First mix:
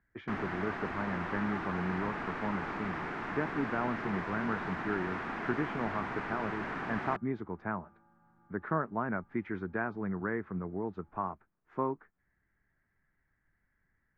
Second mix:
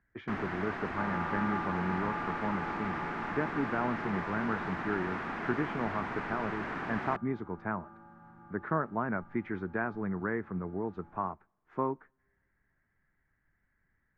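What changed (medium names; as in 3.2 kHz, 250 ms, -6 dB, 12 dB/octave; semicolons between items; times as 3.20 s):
second sound +12.0 dB; reverb: on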